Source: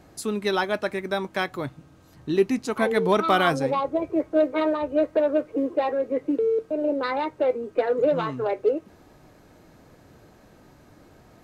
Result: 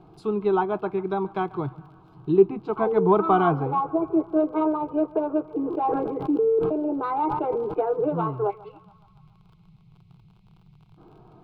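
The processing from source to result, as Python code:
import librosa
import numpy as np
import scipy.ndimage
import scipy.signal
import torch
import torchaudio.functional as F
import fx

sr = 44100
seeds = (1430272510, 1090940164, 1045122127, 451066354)

y = fx.spec_box(x, sr, start_s=8.5, length_s=2.48, low_hz=210.0, high_hz=1800.0, gain_db=-25)
y = fx.env_lowpass_down(y, sr, base_hz=2100.0, full_db=-21.5)
y = fx.dmg_crackle(y, sr, seeds[0], per_s=43.0, level_db=-37.0)
y = fx.air_absorb(y, sr, metres=450.0)
y = fx.fixed_phaser(y, sr, hz=370.0, stages=8)
y = fx.echo_banded(y, sr, ms=140, feedback_pct=69, hz=1200.0, wet_db=-19.0)
y = fx.sustainer(y, sr, db_per_s=28.0, at=(5.44, 7.74))
y = y * 10.0 ** (5.5 / 20.0)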